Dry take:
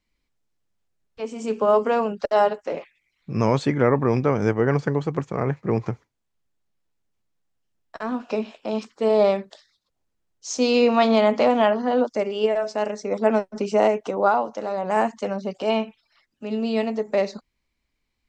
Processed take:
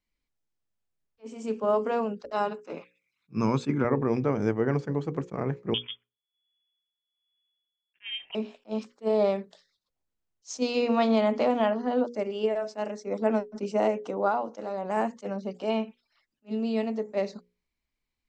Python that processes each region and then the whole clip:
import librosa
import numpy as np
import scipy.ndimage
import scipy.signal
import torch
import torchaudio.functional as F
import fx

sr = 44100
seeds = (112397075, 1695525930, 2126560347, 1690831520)

y = fx.chain(x, sr, fx.highpass(hz=120.0, slope=12),
    fx.comb(ms=0.8, depth=0.51), at=(2.32, 3.85))
y = fx.chain(y, sr, fx.freq_invert(carrier_hz=3400),
    fx.tremolo(hz=1.2, depth=0.7), at=(5.74, 8.35))
y = fx.hum_notches(y, sr, base_hz=60, count=9)
y = fx.dynamic_eq(y, sr, hz=260.0, q=0.75, threshold_db=-34.0, ratio=4.0, max_db=5)
y = fx.attack_slew(y, sr, db_per_s=440.0)
y = F.gain(torch.from_numpy(y), -8.0).numpy()